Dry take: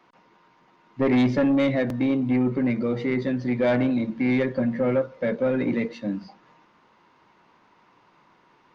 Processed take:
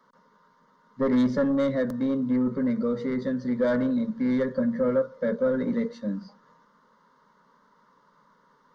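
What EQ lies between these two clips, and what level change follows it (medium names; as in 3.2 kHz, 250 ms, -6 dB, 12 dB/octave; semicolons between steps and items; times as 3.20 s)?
static phaser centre 500 Hz, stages 8; 0.0 dB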